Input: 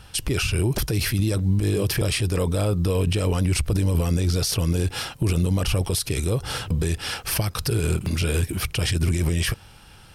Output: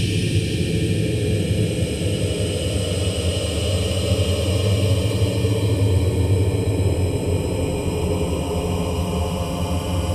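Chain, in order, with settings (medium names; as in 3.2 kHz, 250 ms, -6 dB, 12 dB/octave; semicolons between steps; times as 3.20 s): peaking EQ 1.3 kHz -10.5 dB 0.43 oct; gated-style reverb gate 130 ms rising, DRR 3 dB; Paulstretch 47×, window 0.10 s, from 3.15 s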